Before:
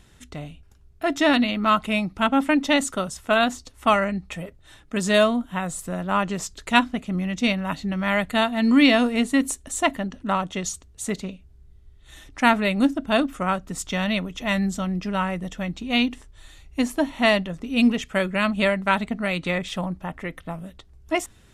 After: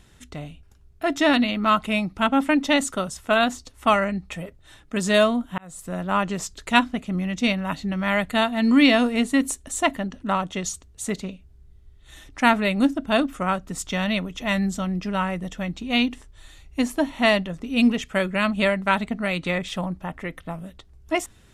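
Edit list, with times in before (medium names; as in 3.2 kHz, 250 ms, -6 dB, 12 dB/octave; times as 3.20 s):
5.58–5.97 s: fade in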